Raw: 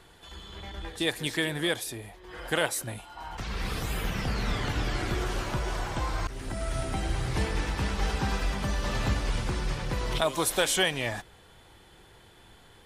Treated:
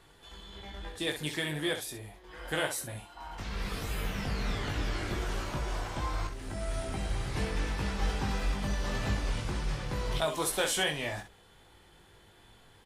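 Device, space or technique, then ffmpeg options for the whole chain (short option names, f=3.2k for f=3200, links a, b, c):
slapback doubling: -filter_complex "[0:a]asplit=3[a][b][c];[b]adelay=20,volume=-4.5dB[d];[c]adelay=65,volume=-9dB[e];[a][d][e]amix=inputs=3:normalize=0,volume=-5.5dB"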